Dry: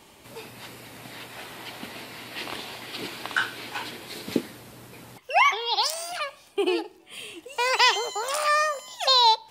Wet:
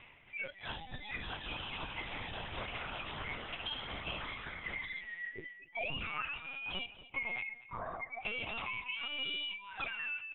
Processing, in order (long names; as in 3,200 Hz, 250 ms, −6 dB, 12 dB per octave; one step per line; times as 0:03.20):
neighbouring bands swapped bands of 2,000 Hz
noise reduction from a noise print of the clip's start 26 dB
mains-hum notches 50/100/150/200 Hz
reversed playback
upward compression, threshold −26 dBFS
reversed playback
brickwall limiter −18 dBFS, peak gain reduction 11 dB
downward compressor 4 to 1, threshold −43 dBFS, peak gain reduction 16.5 dB
flanger 1.9 Hz, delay 6.8 ms, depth 7.5 ms, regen +58%
on a send: repeating echo 217 ms, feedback 19%, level −16 dB
on the sum: linear-prediction vocoder at 8 kHz pitch kept
wrong playback speed 48 kHz file played as 44.1 kHz
level +7.5 dB